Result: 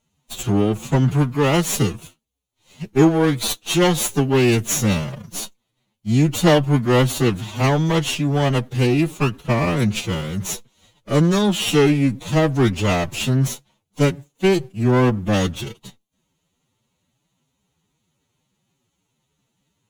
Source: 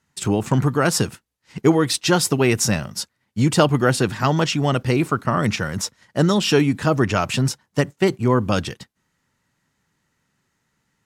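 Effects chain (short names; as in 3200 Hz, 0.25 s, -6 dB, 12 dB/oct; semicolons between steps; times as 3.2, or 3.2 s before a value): minimum comb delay 0.3 ms; time stretch by phase-locked vocoder 1.8×; gain +1 dB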